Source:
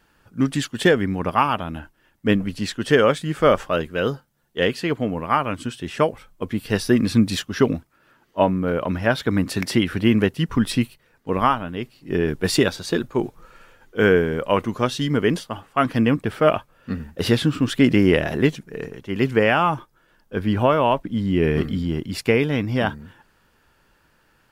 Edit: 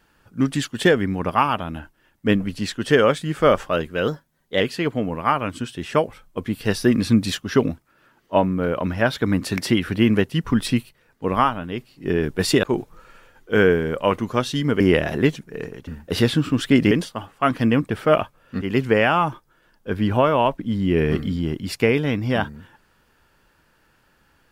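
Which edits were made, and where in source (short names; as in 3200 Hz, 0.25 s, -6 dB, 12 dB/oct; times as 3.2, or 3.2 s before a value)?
4.08–4.65 speed 109%
12.68–13.09 cut
15.26–16.96 swap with 18–19.07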